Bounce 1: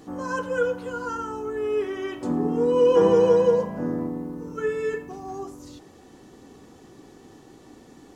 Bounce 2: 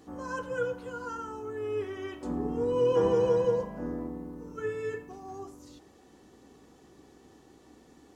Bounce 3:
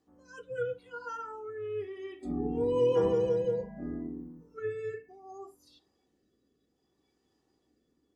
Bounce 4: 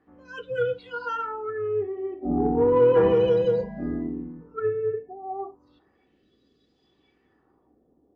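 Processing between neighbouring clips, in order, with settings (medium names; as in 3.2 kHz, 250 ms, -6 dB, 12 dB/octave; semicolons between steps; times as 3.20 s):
octave divider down 2 oct, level -4 dB; bass shelf 95 Hz -10 dB; trim -7 dB
spectral noise reduction 17 dB; rotary cabinet horn 0.65 Hz
LFO low-pass sine 0.34 Hz 700–4200 Hz; in parallel at -5 dB: saturation -25 dBFS, distortion -13 dB; on the sum: trim +4.5 dB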